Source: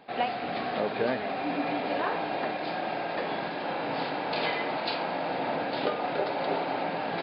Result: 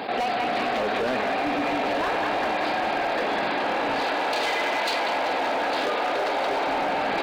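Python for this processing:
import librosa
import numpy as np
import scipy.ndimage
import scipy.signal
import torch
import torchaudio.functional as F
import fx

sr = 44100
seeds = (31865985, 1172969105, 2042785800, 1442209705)

y = scipy.signal.sosfilt(scipy.signal.butter(2, 120.0, 'highpass', fs=sr, output='sos'), x)
y = fx.peak_eq(y, sr, hz=160.0, db=-14.0, octaves=0.23)
y = fx.echo_wet_bandpass(y, sr, ms=192, feedback_pct=64, hz=1600.0, wet_db=-3.5)
y = np.clip(y, -10.0 ** (-26.5 / 20.0), 10.0 ** (-26.5 / 20.0))
y = fx.bass_treble(y, sr, bass_db=-9, treble_db=1, at=(4.0, 6.67))
y = fx.env_flatten(y, sr, amount_pct=70)
y = F.gain(torch.from_numpy(y), 4.0).numpy()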